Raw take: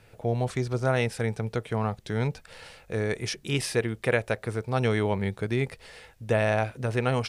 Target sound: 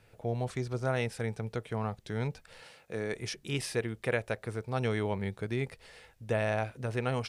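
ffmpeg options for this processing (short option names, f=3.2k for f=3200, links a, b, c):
-filter_complex "[0:a]asettb=1/sr,asplit=3[a][b][c];[a]atrim=end=2.624[d];[b]atrim=start=2.62:end=3.14,asetpts=PTS-STARTPTS,afade=t=in:d=0.004:c=qsin,afade=t=out:st=0.516:d=0.004:c=qsin,highpass=140[e];[c]atrim=start=3.136[f];[d][e]acrossfade=d=0.004:c1=hsin:c2=qsin[g];[g][f]acrossfade=d=0.004:c1=qsin:c2=hsin,volume=-6dB"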